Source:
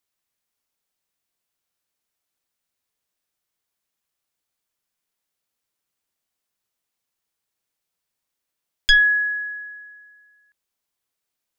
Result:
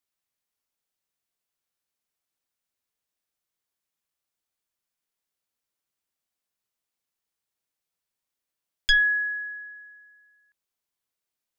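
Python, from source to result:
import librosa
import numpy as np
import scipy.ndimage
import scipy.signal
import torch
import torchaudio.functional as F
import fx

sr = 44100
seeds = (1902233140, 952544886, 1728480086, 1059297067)

y = fx.lowpass(x, sr, hz=4100.0, slope=12, at=(8.92, 9.74), fade=0.02)
y = y * 10.0 ** (-5.0 / 20.0)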